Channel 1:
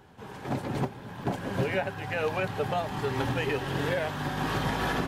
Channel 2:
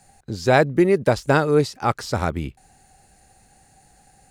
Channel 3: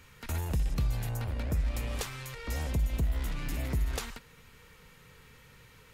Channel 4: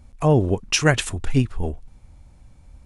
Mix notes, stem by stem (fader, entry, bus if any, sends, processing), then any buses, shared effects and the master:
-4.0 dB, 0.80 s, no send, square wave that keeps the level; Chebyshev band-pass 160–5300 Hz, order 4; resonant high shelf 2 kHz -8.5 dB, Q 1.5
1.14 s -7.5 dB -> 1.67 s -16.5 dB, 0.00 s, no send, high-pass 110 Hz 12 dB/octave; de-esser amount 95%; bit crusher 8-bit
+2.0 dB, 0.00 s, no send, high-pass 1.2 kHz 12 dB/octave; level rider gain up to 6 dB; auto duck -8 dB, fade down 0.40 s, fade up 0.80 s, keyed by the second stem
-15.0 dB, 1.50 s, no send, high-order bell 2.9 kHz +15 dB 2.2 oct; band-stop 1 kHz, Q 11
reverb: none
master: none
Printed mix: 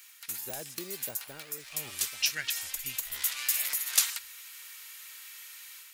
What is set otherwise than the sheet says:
stem 1: muted; stem 3 +2.0 dB -> +12.0 dB; master: extra pre-emphasis filter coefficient 0.9

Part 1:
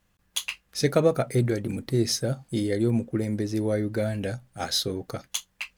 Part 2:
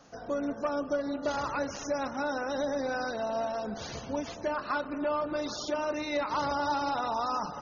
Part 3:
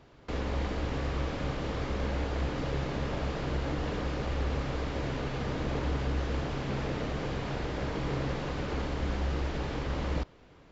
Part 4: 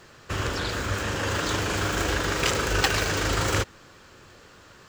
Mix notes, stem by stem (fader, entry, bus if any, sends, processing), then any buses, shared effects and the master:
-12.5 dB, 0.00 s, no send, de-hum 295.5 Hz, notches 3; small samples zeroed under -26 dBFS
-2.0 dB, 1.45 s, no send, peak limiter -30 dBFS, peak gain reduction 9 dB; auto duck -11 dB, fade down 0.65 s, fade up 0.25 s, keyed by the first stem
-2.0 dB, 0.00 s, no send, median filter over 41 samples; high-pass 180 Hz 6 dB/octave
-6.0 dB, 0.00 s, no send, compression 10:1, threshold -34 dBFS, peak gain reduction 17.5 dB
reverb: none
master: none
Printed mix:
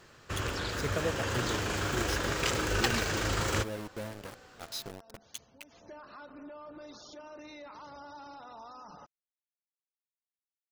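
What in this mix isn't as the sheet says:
stem 2 -2.0 dB -> -10.5 dB; stem 3: muted; stem 4: missing compression 10:1, threshold -34 dBFS, peak gain reduction 17.5 dB

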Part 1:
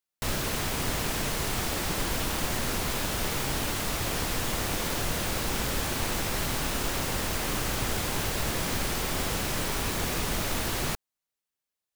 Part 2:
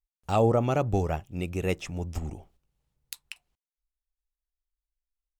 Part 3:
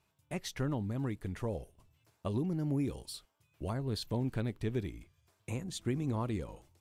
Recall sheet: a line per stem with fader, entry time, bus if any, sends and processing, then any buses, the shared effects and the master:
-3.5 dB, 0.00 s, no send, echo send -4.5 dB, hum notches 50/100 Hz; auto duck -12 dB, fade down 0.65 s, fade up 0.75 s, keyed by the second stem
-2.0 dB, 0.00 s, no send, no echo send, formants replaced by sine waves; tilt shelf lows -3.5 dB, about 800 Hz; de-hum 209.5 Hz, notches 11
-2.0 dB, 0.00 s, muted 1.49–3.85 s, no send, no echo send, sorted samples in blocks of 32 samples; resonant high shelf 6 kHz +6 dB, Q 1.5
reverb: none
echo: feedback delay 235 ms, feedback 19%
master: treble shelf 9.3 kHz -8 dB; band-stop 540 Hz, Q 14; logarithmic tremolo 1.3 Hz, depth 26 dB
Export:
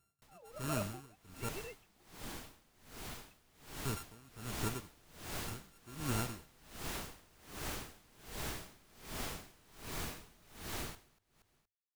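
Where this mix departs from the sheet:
stem 1 -3.5 dB -> -11.5 dB; stem 2 -2.0 dB -> -12.5 dB; master: missing treble shelf 9.3 kHz -8 dB

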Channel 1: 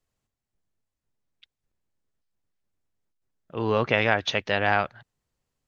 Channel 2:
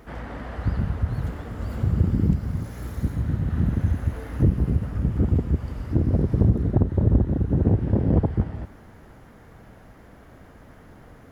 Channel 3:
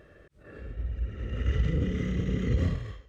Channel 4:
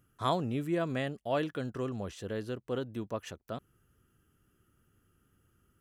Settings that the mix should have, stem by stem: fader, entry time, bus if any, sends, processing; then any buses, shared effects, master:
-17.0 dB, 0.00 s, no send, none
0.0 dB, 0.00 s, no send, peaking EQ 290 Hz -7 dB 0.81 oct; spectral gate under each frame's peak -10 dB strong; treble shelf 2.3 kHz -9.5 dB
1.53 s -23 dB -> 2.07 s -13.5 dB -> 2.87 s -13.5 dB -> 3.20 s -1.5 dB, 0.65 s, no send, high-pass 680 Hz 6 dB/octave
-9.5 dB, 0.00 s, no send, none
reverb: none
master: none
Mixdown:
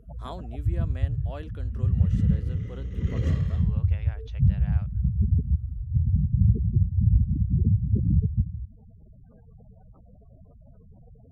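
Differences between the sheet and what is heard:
stem 1 -17.0 dB -> -26.5 dB; stem 3: missing high-pass 680 Hz 6 dB/octave

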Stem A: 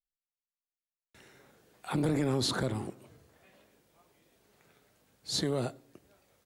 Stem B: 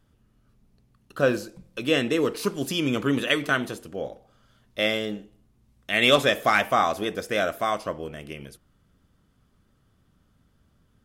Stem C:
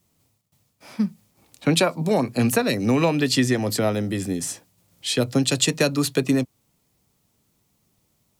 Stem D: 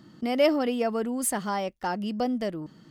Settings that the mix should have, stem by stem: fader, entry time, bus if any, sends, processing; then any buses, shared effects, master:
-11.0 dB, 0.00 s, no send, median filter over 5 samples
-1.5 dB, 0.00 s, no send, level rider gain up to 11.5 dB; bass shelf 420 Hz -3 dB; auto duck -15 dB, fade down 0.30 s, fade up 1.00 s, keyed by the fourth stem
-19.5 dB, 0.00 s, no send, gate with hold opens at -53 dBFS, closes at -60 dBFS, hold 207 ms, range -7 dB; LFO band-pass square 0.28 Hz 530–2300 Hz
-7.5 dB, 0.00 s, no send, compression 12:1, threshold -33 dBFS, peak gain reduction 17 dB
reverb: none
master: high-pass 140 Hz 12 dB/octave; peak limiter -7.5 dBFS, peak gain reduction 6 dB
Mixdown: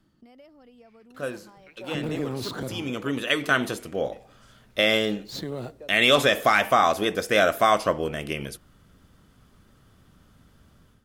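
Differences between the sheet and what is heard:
stem A -11.0 dB -> -2.0 dB; stem D -7.5 dB -> -16.0 dB; master: missing high-pass 140 Hz 12 dB/octave

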